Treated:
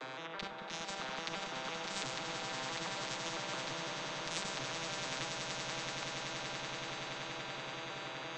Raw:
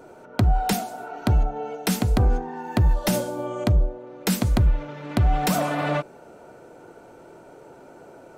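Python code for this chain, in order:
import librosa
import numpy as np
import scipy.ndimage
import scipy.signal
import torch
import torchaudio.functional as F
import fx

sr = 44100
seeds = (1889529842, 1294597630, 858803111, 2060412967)

y = fx.vocoder_arp(x, sr, chord='major triad', root=48, every_ms=168)
y = scipy.signal.sosfilt(scipy.signal.butter(2, 860.0, 'highpass', fs=sr, output='sos'), y)
y = fx.peak_eq(y, sr, hz=3700.0, db=11.0, octaves=0.28)
y = y + 0.96 * np.pad(y, (int(6.4 * sr / 1000.0), 0))[:len(y)]
y = fx.over_compress(y, sr, threshold_db=-41.0, ratio=-0.5)
y = fx.air_absorb(y, sr, metres=130.0)
y = fx.echo_swell(y, sr, ms=95, loudest=8, wet_db=-13.0)
y = fx.spectral_comp(y, sr, ratio=4.0)
y = y * librosa.db_to_amplitude(3.5)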